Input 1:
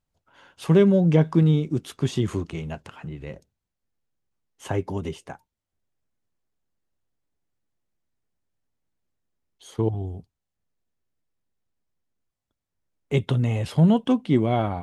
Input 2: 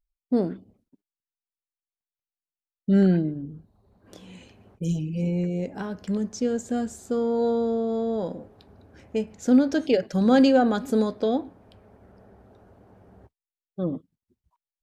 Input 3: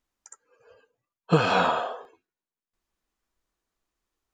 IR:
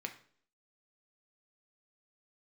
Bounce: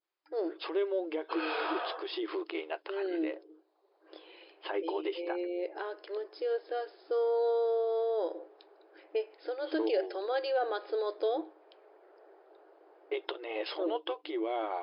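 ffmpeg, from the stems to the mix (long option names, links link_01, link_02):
-filter_complex "[0:a]agate=range=-33dB:threshold=-42dB:ratio=3:detection=peak,acompressor=threshold=-22dB:ratio=6,volume=0.5dB[link_01];[1:a]alimiter=limit=-18.5dB:level=0:latency=1:release=66,lowshelf=frequency=140:gain=3,volume=-2.5dB,asplit=2[link_02][link_03];[2:a]adynamicequalizer=threshold=0.01:dfrequency=2100:dqfactor=0.78:tfrequency=2100:tqfactor=0.78:attack=5:release=100:ratio=0.375:range=3:mode=boostabove:tftype=bell,alimiter=limit=-16dB:level=0:latency=1:release=388,asoftclip=type=hard:threshold=-26.5dB,volume=-7.5dB,asplit=2[link_04][link_05];[link_05]volume=-4dB[link_06];[link_03]apad=whole_len=190983[link_07];[link_04][link_07]sidechaincompress=threshold=-35dB:ratio=8:attack=16:release=120[link_08];[link_01][link_08]amix=inputs=2:normalize=0,alimiter=limit=-20dB:level=0:latency=1:release=82,volume=0dB[link_09];[3:a]atrim=start_sample=2205[link_10];[link_06][link_10]afir=irnorm=-1:irlink=0[link_11];[link_02][link_09][link_11]amix=inputs=3:normalize=0,afftfilt=real='re*between(b*sr/4096,310,5200)':imag='im*between(b*sr/4096,310,5200)':win_size=4096:overlap=0.75"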